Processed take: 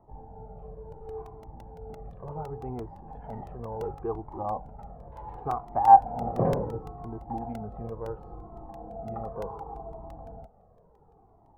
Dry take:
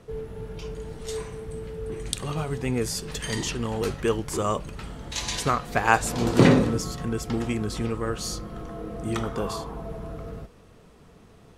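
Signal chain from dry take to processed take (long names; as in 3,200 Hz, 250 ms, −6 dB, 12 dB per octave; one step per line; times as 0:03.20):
transistor ladder low-pass 850 Hz, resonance 80%
regular buffer underruns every 0.17 s, samples 64, repeat, from 0:00.92
flanger whose copies keep moving one way falling 0.7 Hz
level +6.5 dB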